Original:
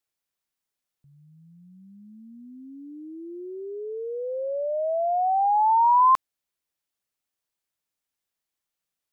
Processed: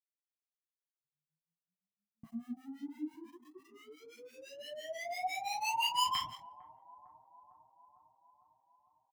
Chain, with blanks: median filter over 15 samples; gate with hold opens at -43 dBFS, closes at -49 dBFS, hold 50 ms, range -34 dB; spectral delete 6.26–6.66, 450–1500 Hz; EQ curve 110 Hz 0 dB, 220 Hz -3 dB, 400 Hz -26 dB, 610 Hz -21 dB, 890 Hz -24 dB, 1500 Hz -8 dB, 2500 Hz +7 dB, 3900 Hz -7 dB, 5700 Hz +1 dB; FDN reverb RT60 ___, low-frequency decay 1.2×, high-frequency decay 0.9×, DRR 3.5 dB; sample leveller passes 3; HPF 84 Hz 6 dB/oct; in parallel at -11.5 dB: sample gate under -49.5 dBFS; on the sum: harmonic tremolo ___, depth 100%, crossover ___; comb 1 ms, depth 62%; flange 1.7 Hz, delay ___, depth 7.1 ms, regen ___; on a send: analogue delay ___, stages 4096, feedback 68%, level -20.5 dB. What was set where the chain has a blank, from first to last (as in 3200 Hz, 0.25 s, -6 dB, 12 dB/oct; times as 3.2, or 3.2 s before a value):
0.68 s, 5.9 Hz, 890 Hz, 4.5 ms, +38%, 0.453 s